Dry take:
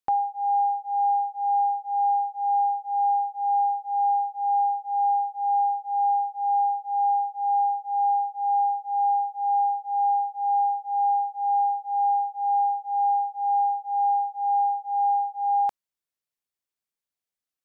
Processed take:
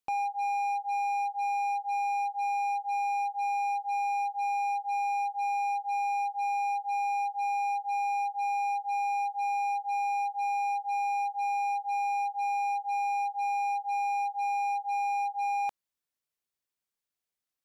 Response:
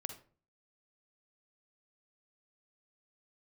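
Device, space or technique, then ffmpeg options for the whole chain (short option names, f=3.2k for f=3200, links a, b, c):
limiter into clipper: -af "alimiter=limit=-23dB:level=0:latency=1,asoftclip=type=hard:threshold=-28dB"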